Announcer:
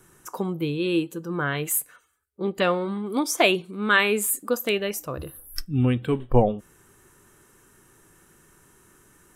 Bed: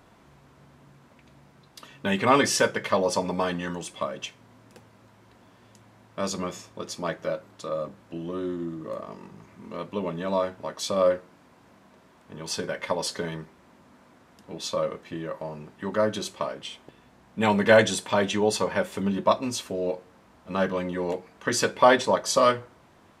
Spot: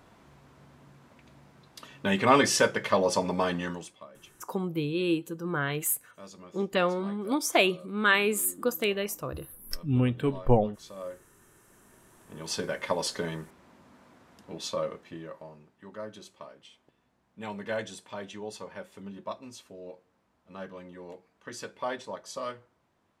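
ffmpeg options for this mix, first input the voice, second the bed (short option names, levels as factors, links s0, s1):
-filter_complex "[0:a]adelay=4150,volume=0.668[s0];[1:a]volume=5.96,afade=t=out:st=3.63:d=0.35:silence=0.141254,afade=t=in:st=11.45:d=1.16:silence=0.149624,afade=t=out:st=14.36:d=1.33:silence=0.188365[s1];[s0][s1]amix=inputs=2:normalize=0"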